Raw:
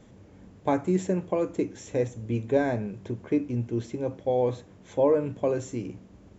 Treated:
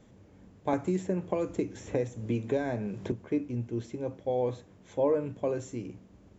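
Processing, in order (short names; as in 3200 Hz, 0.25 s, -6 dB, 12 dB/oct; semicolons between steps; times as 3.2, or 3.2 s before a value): 0.73–3.12 three-band squash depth 100%; gain -4.5 dB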